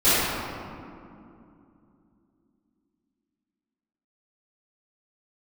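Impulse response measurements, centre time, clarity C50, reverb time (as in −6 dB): 169 ms, −6.0 dB, 2.6 s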